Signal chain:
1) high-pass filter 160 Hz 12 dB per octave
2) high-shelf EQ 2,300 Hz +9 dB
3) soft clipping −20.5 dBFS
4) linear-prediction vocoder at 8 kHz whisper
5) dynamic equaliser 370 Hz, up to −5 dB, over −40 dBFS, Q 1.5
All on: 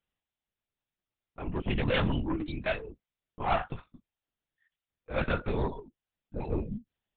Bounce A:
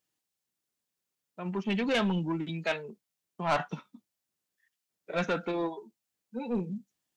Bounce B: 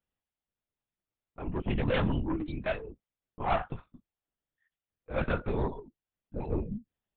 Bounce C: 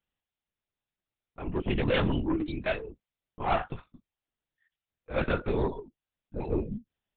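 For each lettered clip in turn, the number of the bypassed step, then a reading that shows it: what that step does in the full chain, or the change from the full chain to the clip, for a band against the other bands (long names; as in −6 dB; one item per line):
4, 125 Hz band −4.0 dB
2, 4 kHz band −4.5 dB
5, 500 Hz band +2.5 dB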